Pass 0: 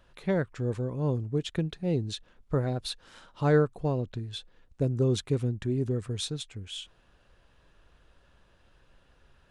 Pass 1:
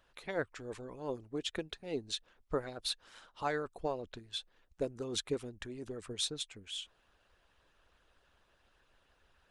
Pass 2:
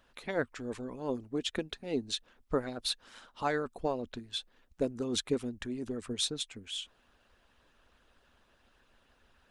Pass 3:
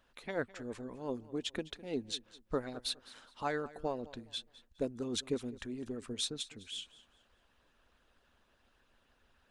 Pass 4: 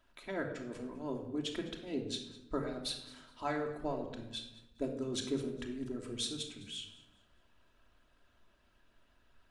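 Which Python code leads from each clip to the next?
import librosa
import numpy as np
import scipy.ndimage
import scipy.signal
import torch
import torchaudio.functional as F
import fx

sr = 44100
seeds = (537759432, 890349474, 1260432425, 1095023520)

y1 = fx.peak_eq(x, sr, hz=140.0, db=-12.0, octaves=2.1)
y1 = fx.hpss(y1, sr, part='harmonic', gain_db=-12)
y2 = fx.peak_eq(y1, sr, hz=240.0, db=8.5, octaves=0.37)
y2 = y2 * librosa.db_to_amplitude(3.0)
y3 = fx.echo_feedback(y2, sr, ms=207, feedback_pct=30, wet_db=-19.0)
y3 = y3 * librosa.db_to_amplitude(-4.0)
y4 = fx.room_shoebox(y3, sr, seeds[0], volume_m3=2400.0, walls='furnished', distance_m=2.9)
y4 = y4 * librosa.db_to_amplitude(-3.0)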